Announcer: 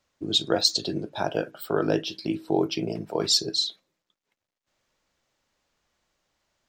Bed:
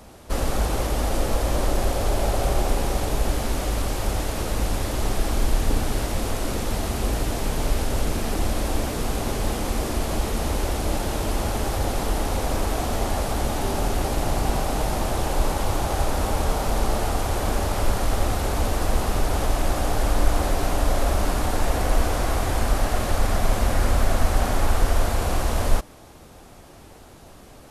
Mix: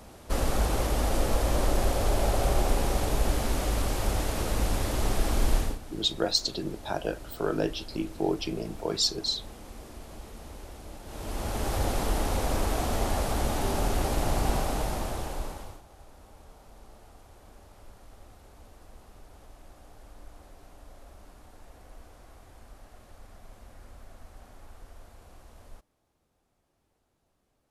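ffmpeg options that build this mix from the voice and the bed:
-filter_complex "[0:a]adelay=5700,volume=0.631[s0];[1:a]volume=4.47,afade=t=out:st=5.56:d=0.22:silence=0.149624,afade=t=in:st=11.04:d=0.74:silence=0.158489,afade=t=out:st=14.52:d=1.3:silence=0.0530884[s1];[s0][s1]amix=inputs=2:normalize=0"

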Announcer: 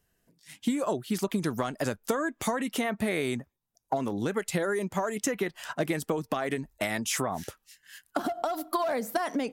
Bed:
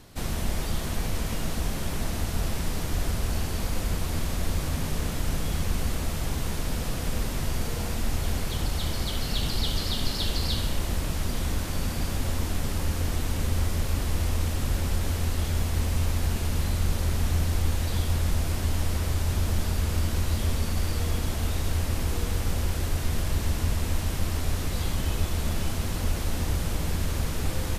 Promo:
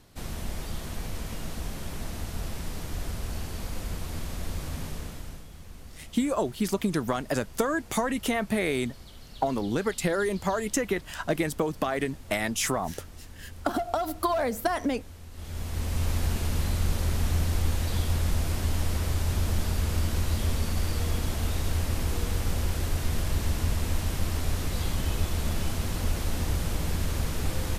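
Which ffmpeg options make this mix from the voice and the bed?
-filter_complex "[0:a]adelay=5500,volume=1.26[s0];[1:a]volume=3.76,afade=t=out:st=4.82:d=0.65:silence=0.237137,afade=t=in:st=15.31:d=0.82:silence=0.133352[s1];[s0][s1]amix=inputs=2:normalize=0"

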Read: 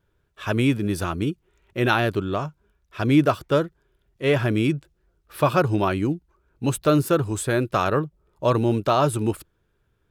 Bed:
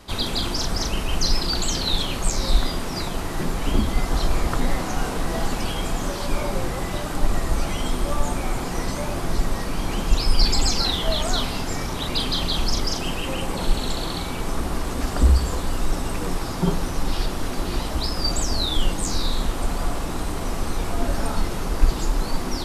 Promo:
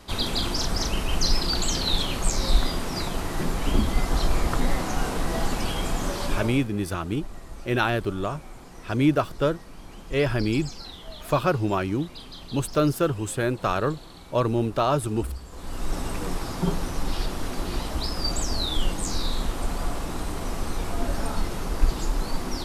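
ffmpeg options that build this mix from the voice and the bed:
-filter_complex "[0:a]adelay=5900,volume=0.708[s0];[1:a]volume=4.47,afade=t=out:st=6.26:d=0.41:silence=0.149624,afade=t=in:st=15.51:d=0.48:silence=0.188365[s1];[s0][s1]amix=inputs=2:normalize=0"

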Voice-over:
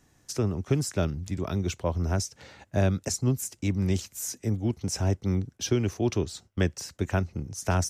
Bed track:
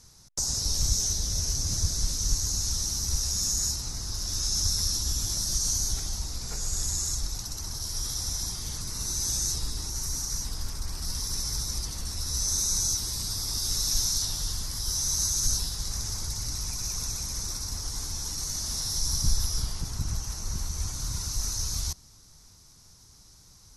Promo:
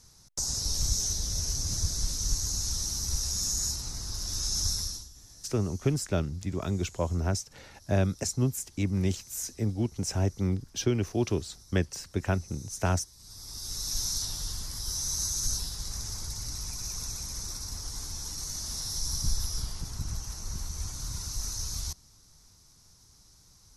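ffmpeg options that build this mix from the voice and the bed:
-filter_complex "[0:a]adelay=5150,volume=0.841[s0];[1:a]volume=6.68,afade=t=out:st=4.7:d=0.39:silence=0.0944061,afade=t=in:st=13.17:d=0.94:silence=0.112202[s1];[s0][s1]amix=inputs=2:normalize=0"

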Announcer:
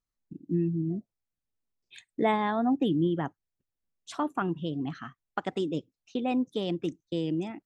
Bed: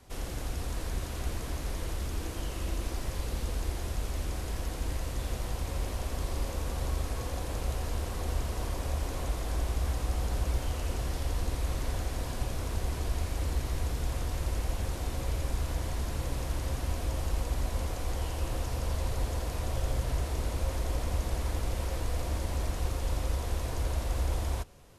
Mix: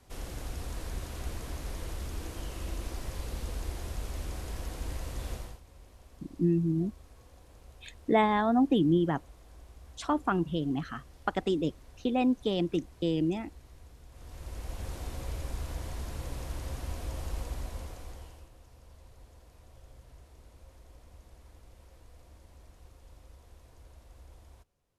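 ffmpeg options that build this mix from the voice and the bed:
-filter_complex "[0:a]adelay=5900,volume=1.19[s0];[1:a]volume=4.22,afade=t=out:st=5.32:d=0.28:silence=0.133352,afade=t=in:st=14.11:d=0.81:silence=0.158489,afade=t=out:st=17.42:d=1.08:silence=0.125893[s1];[s0][s1]amix=inputs=2:normalize=0"

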